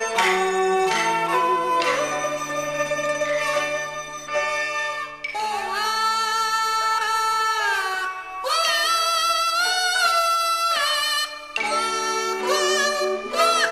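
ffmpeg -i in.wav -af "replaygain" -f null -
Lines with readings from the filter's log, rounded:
track_gain = +2.9 dB
track_peak = 0.307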